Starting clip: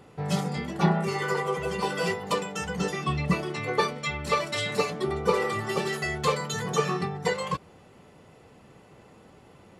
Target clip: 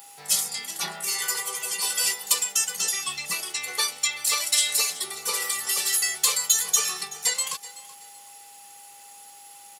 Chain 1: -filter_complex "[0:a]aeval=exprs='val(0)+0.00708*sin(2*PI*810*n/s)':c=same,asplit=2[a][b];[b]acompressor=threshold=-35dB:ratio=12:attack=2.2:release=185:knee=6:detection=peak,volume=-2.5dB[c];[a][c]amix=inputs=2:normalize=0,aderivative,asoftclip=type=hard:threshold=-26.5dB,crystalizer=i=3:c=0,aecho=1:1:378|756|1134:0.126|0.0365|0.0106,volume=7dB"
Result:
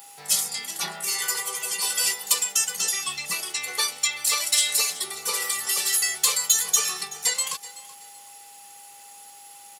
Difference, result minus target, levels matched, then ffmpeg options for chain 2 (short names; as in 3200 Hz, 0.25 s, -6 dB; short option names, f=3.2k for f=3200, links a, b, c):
compressor: peak gain reduction -6 dB
-filter_complex "[0:a]aeval=exprs='val(0)+0.00708*sin(2*PI*810*n/s)':c=same,asplit=2[a][b];[b]acompressor=threshold=-41.5dB:ratio=12:attack=2.2:release=185:knee=6:detection=peak,volume=-2.5dB[c];[a][c]amix=inputs=2:normalize=0,aderivative,asoftclip=type=hard:threshold=-26.5dB,crystalizer=i=3:c=0,aecho=1:1:378|756|1134:0.126|0.0365|0.0106,volume=7dB"